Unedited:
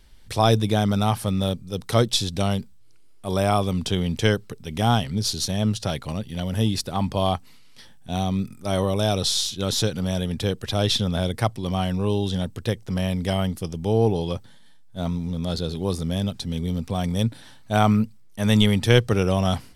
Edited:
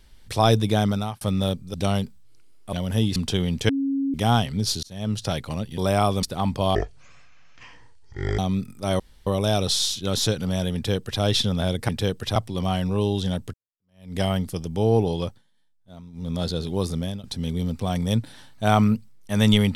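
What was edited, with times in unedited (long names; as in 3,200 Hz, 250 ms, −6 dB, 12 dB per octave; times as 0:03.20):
0:00.86–0:01.21: fade out
0:01.74–0:02.30: remove
0:03.29–0:03.74: swap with 0:06.36–0:06.79
0:04.27–0:04.72: beep over 274 Hz −21 dBFS
0:05.41–0:05.82: fade in
0:07.31–0:08.21: play speed 55%
0:08.82: splice in room tone 0.27 s
0:10.30–0:10.77: duplicate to 0:11.44
0:12.62–0:13.25: fade in exponential
0:14.33–0:15.39: duck −16.5 dB, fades 0.18 s
0:16.05–0:16.32: fade out, to −18.5 dB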